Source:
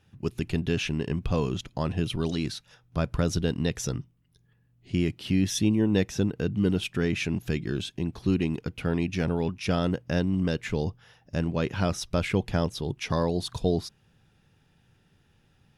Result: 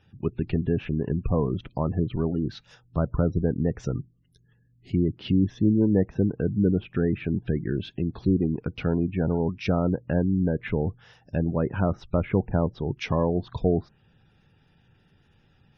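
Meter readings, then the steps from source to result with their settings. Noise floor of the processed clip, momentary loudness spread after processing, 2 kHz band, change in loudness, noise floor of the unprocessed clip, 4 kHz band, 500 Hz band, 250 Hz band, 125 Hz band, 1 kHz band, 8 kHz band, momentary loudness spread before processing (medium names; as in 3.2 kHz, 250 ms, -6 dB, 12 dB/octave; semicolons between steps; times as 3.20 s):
-63 dBFS, 7 LU, -4.5 dB, +2.0 dB, -65 dBFS, -9.0 dB, +2.5 dB, +2.5 dB, +2.5 dB, +0.5 dB, under -15 dB, 7 LU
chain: low-pass that closes with the level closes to 1.2 kHz, closed at -24 dBFS; spectral gate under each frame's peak -30 dB strong; trim +2.5 dB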